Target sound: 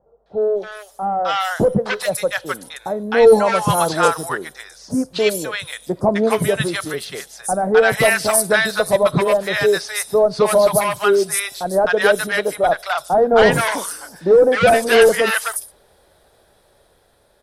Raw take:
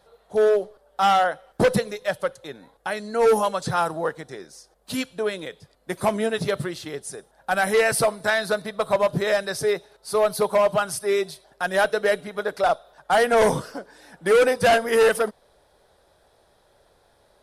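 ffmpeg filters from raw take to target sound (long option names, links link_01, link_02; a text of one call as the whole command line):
ffmpeg -i in.wav -filter_complex "[0:a]highshelf=frequency=8200:gain=6,acrossover=split=900|5700[link_01][link_02][link_03];[link_02]adelay=260[link_04];[link_03]adelay=410[link_05];[link_01][link_04][link_05]amix=inputs=3:normalize=0,dynaudnorm=framelen=790:gausssize=5:maxgain=11.5dB" out.wav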